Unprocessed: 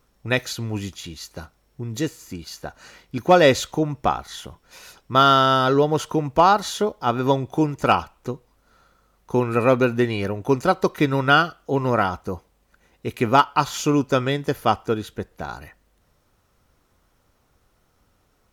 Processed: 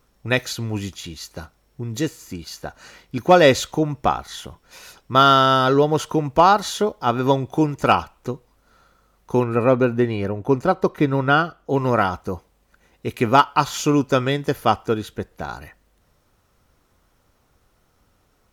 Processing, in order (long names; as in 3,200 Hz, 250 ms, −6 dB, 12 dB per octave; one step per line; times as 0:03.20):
0:09.44–0:11.70: high-shelf EQ 2,000 Hz −10 dB
level +1.5 dB